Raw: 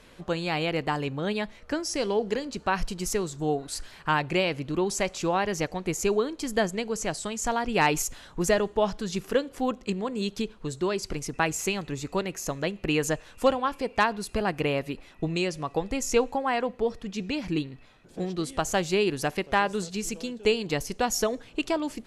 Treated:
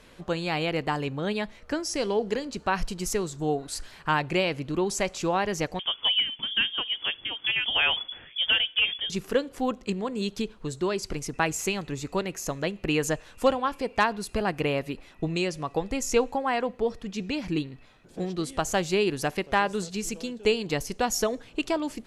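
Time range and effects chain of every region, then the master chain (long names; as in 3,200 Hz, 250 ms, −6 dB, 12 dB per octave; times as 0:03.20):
0:05.79–0:09.10: hard clipping −17 dBFS + voice inversion scrambler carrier 3,400 Hz
whole clip: no processing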